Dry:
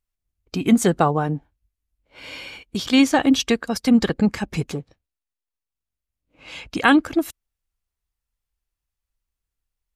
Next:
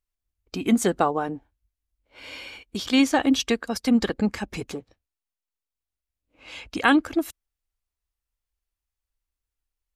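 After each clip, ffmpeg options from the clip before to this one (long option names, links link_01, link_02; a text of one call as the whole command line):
ffmpeg -i in.wav -af "equalizer=frequency=150:width_type=o:width=0.38:gain=-13,volume=-3dB" out.wav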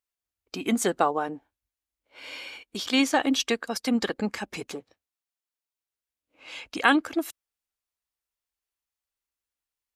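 ffmpeg -i in.wav -af "highpass=frequency=370:poles=1" out.wav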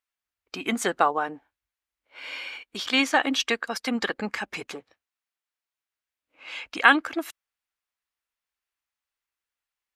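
ffmpeg -i in.wav -af "equalizer=frequency=1700:width_type=o:width=2.6:gain=10,volume=-4.5dB" out.wav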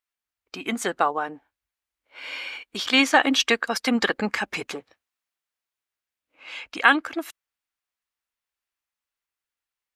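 ffmpeg -i in.wav -af "dynaudnorm=framelen=660:gausssize=7:maxgain=11.5dB,volume=-1dB" out.wav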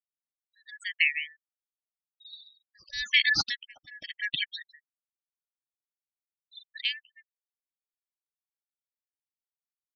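ffmpeg -i in.wav -af "afftfilt=real='real(if(lt(b,272),68*(eq(floor(b/68),0)*3+eq(floor(b/68),1)*0+eq(floor(b/68),2)*1+eq(floor(b/68),3)*2)+mod(b,68),b),0)':imag='imag(if(lt(b,272),68*(eq(floor(b/68),0)*3+eq(floor(b/68),1)*0+eq(floor(b/68),2)*1+eq(floor(b/68),3)*2)+mod(b,68),b),0)':win_size=2048:overlap=0.75,afftfilt=real='re*gte(hypot(re,im),0.0794)':imag='im*gte(hypot(re,im),0.0794)':win_size=1024:overlap=0.75,aeval=exprs='val(0)*pow(10,-25*(0.5-0.5*cos(2*PI*0.9*n/s))/20)':channel_layout=same,volume=-2.5dB" out.wav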